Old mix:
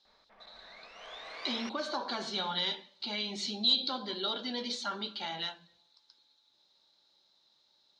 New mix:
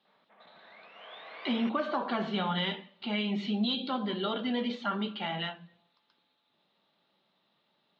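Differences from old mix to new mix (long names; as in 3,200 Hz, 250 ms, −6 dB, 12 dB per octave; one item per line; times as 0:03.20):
speech: remove loudspeaker in its box 390–5,500 Hz, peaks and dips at 450 Hz −5 dB, 680 Hz −6 dB, 1,200 Hz −7 dB, 1,900 Hz −6 dB, 2,700 Hz −6 dB, 4,000 Hz +5 dB
master: add elliptic band-pass filter 180–3,300 Hz, stop band 50 dB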